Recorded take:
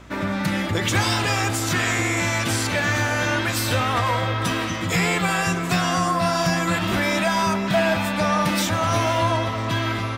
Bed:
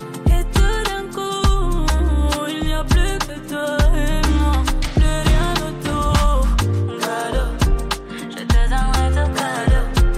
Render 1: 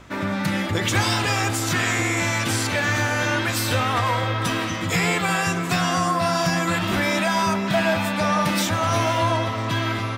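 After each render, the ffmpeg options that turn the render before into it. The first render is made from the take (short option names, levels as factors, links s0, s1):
-af "bandreject=f=60:t=h:w=4,bandreject=f=120:t=h:w=4,bandreject=f=180:t=h:w=4,bandreject=f=240:t=h:w=4,bandreject=f=300:t=h:w=4,bandreject=f=360:t=h:w=4,bandreject=f=420:t=h:w=4,bandreject=f=480:t=h:w=4,bandreject=f=540:t=h:w=4,bandreject=f=600:t=h:w=4,bandreject=f=660:t=h:w=4"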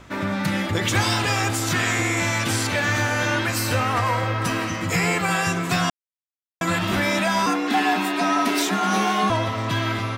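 -filter_complex "[0:a]asettb=1/sr,asplit=3[s0][s1][s2];[s0]atrim=end=3.474[s3];[s1]atrim=start=3.47:end=5.31,asetpts=PTS-STARTPTS,afade=t=in:d=0.004:c=qsin,afade=t=out:st=1.836:d=0.004:c=qsin,equalizer=f=3500:w=7:g=-11[s4];[s2]atrim=start=5.306[s5];[s3][s4]acrossfade=d=0.004:c1=hsin:c2=qsin[s6];[s6][s5]acrossfade=d=0.004:c1=qsin:c2=hsin,asettb=1/sr,asplit=3[s7][s8][s9];[s7]atrim=end=7.464[s10];[s8]atrim=start=7.46:end=9.3,asetpts=PTS-STARTPTS,afade=t=in:d=0.004:c=qsin,afade=t=out:st=1.836:d=0.004:c=qsin,afreqshift=93[s11];[s9]atrim=start=9.296[s12];[s10][s11]acrossfade=d=0.004:c1=hsin:c2=qsin[s13];[s13][s12]acrossfade=d=0.004:c1=qsin:c2=hsin,asplit=3[s14][s15][s16];[s14]atrim=end=5.9,asetpts=PTS-STARTPTS,afade=t=out:st=5.896:d=0.004:c=hsin[s17];[s15]atrim=start=5.9:end=6.61,asetpts=PTS-STARTPTS,volume=0[s18];[s16]atrim=start=6.61,asetpts=PTS-STARTPTS,afade=t=in:d=0.004:c=hsin[s19];[s17][s18][s19]concat=n=3:v=0:a=1"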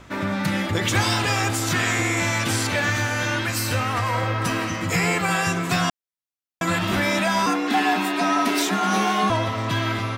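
-filter_complex "[0:a]asettb=1/sr,asplit=3[s0][s1][s2];[s0]atrim=end=2.904[s3];[s1]atrim=start=2.9:end=4.14,asetpts=PTS-STARTPTS,afade=t=in:d=0.004:c=qsin,afade=t=out:st=1.236:d=0.004:c=qsin,equalizer=f=600:t=o:w=2.7:g=-3.5[s4];[s2]atrim=start=4.136[s5];[s3][s4]acrossfade=d=0.004:c1=hsin:c2=qsin[s6];[s6][s5]acrossfade=d=0.004:c1=qsin:c2=hsin"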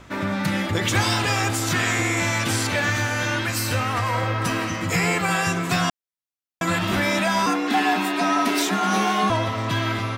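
-af anull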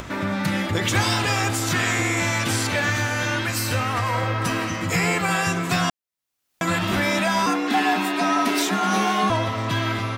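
-af "acompressor=mode=upward:threshold=0.0501:ratio=2.5"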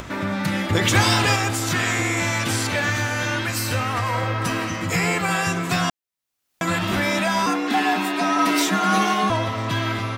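-filter_complex "[0:a]asettb=1/sr,asplit=3[s0][s1][s2];[s0]atrim=end=8.384[s3];[s1]atrim=start=8.38:end=9.14,asetpts=PTS-STARTPTS,afade=t=in:d=0.004:c=qsin,afade=t=out:st=0.756:d=0.004:c=qsin,aecho=1:1:6.3:0.65,atrim=end_sample=33516[s4];[s2]atrim=start=9.136[s5];[s3][s4]acrossfade=d=0.004:c1=hsin:c2=qsin[s6];[s6][s5]acrossfade=d=0.004:c1=qsin:c2=hsin,asplit=3[s7][s8][s9];[s7]atrim=end=0.702[s10];[s8]atrim=start=0.698:end=1.362,asetpts=PTS-STARTPTS,volume=1.5[s11];[s9]atrim=start=1.358[s12];[s10][s11]acrossfade=d=0.004:c1=hsin:c2=hsin[s13];[s13][s12]acrossfade=d=0.004:c1=hsin:c2=hsin"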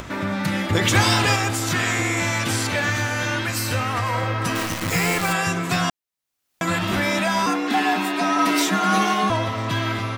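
-filter_complex "[0:a]asettb=1/sr,asplit=3[s0][s1][s2];[s0]atrim=end=4.554[s3];[s1]atrim=start=4.55:end=5.33,asetpts=PTS-STARTPTS,afade=t=in:d=0.004:c=qsin,afade=t=out:st=0.776:d=0.004:c=qsin,acrusher=bits=5:dc=4:mix=0:aa=0.000001[s4];[s2]atrim=start=5.326[s5];[s3][s4]acrossfade=d=0.004:c1=hsin:c2=qsin[s6];[s6][s5]acrossfade=d=0.004:c1=qsin:c2=hsin"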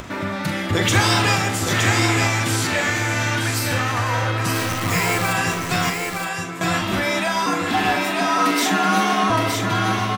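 -filter_complex "[0:a]asplit=2[s0][s1];[s1]adelay=43,volume=0.398[s2];[s0][s2]amix=inputs=2:normalize=0,aecho=1:1:917:0.596"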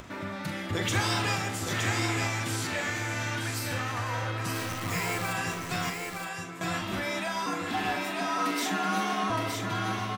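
-af "volume=0.299"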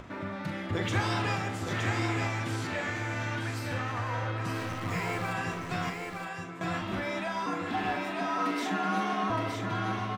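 -af "lowpass=f=2100:p=1"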